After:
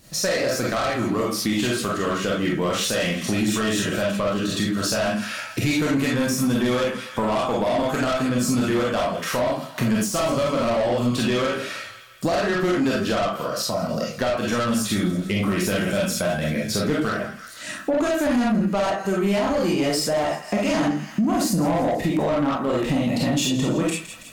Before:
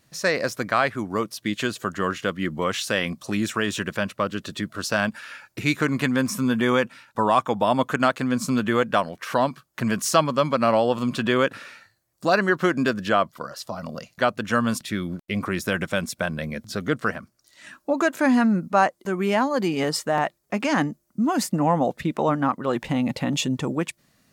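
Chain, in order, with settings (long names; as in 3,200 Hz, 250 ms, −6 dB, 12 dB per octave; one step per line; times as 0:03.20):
on a send: delay with a high-pass on its return 164 ms, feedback 52%, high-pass 1,500 Hz, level −17 dB
on the sum: convolution reverb RT60 0.35 s, pre-delay 5 ms, DRR −5 dB
in parallel at +1 dB: brickwall limiter −6.5 dBFS, peak gain reduction 7 dB
on the sum: soft clipping −9.5 dBFS, distortion −10 dB
downward compressor 3 to 1, threshold −25 dBFS, peak gain reduction 10 dB
parametric band 1,500 Hz −7 dB 2.4 octaves
de-essing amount 50%
level +4.5 dB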